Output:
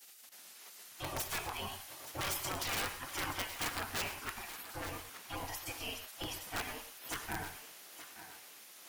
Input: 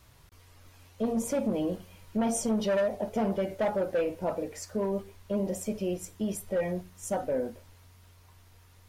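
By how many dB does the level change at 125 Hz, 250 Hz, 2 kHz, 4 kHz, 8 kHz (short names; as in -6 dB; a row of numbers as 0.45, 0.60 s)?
-9.0, -19.0, +3.5, +7.0, -2.5 dB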